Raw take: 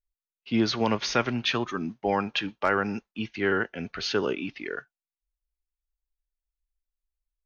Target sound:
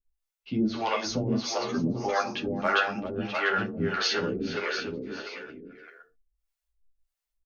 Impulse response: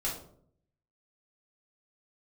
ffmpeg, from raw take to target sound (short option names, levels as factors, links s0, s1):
-filter_complex "[0:a]asettb=1/sr,asplit=3[s0][s1][s2];[s0]atrim=end=0.994[s3];[s1]atrim=start=0.99:end=1.69,asetpts=PTS-STARTPTS,afade=t=in:d=0.004:c=qsin,afade=t=out:st=0.696:d=0.004:c=qsin,asuperstop=centerf=2200:order=8:qfactor=0.61[s4];[s2]atrim=start=1.686[s5];[s3][s4]acrossfade=d=0.004:c1=hsin:c2=qsin[s6];[s6][s5]acrossfade=d=0.004:c1=qsin:c2=hsin,asplit=2[s7][s8];[s8]acompressor=threshold=0.0224:ratio=6,volume=0.891[s9];[s7][s9]amix=inputs=2:normalize=0,aecho=1:1:400|700|925|1094|1220:0.631|0.398|0.251|0.158|0.1,asplit=2[s10][s11];[1:a]atrim=start_sample=2205,atrim=end_sample=6174[s12];[s11][s12]afir=irnorm=-1:irlink=0,volume=0.376[s13];[s10][s13]amix=inputs=2:normalize=0,acrossover=split=460[s14][s15];[s14]aeval=exprs='val(0)*(1-1/2+1/2*cos(2*PI*1.6*n/s))':c=same[s16];[s15]aeval=exprs='val(0)*(1-1/2-1/2*cos(2*PI*1.6*n/s))':c=same[s17];[s16][s17]amix=inputs=2:normalize=0,asplit=2[s18][s19];[s19]adelay=10.4,afreqshift=2.9[s20];[s18][s20]amix=inputs=2:normalize=1,volume=1.12"